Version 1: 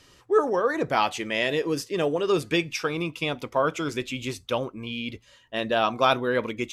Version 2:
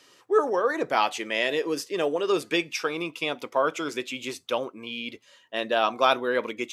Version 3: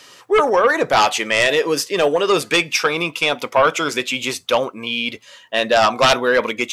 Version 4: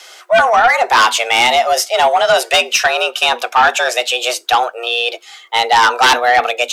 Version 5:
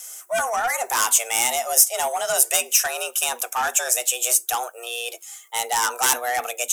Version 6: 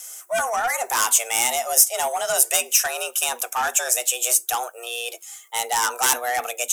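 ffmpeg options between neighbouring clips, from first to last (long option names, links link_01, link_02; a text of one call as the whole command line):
ffmpeg -i in.wav -af "highpass=290" out.wav
ffmpeg -i in.wav -af "equalizer=frequency=330:width_type=o:width=0.84:gain=-7,aeval=exprs='0.422*sin(PI/2*2.82*val(0)/0.422)':channel_layout=same" out.wav
ffmpeg -i in.wav -af "afreqshift=240,acontrast=79,volume=-1dB" out.wav
ffmpeg -i in.wav -af "aexciter=amount=10.5:drive=8.4:freq=6400,volume=-13dB" out.wav
ffmpeg -i in.wav -ar 44100 -c:a libvorbis -b:a 192k out.ogg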